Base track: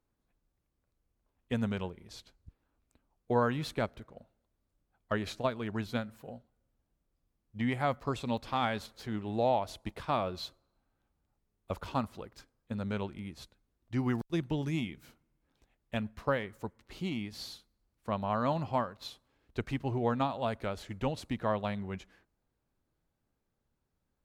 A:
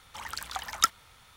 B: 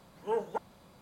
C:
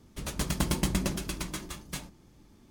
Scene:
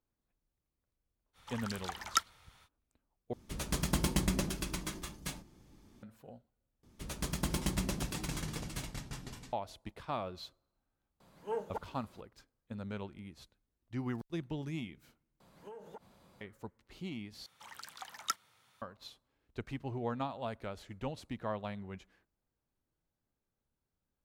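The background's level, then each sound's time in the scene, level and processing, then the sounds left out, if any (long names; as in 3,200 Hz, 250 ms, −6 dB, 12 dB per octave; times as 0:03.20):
base track −6.5 dB
0:01.33: mix in A −6 dB, fades 0.05 s + high-shelf EQ 10,000 Hz −5 dB
0:03.33: overwrite with C −3 dB
0:06.83: overwrite with C −6 dB + delay with pitch and tempo change per echo 470 ms, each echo −3 semitones, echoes 2, each echo −6 dB
0:11.20: mix in B −5.5 dB
0:15.40: overwrite with B −5.5 dB + downward compressor 16 to 1, threshold −39 dBFS
0:17.46: overwrite with A −11.5 dB + high-pass filter 110 Hz 24 dB per octave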